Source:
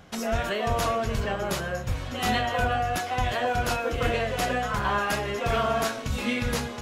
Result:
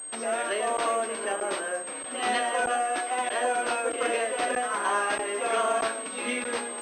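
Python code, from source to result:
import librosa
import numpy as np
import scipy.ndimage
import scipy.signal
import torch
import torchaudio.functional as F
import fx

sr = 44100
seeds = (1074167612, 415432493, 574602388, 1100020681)

y = scipy.signal.sosfilt(scipy.signal.butter(6, 270.0, 'highpass', fs=sr, output='sos'), x)
y = fx.dmg_crackle(y, sr, seeds[0], per_s=260.0, level_db=-43.0)
y = fx.buffer_crackle(y, sr, first_s=0.77, period_s=0.63, block=512, kind='zero')
y = fx.pwm(y, sr, carrier_hz=8400.0)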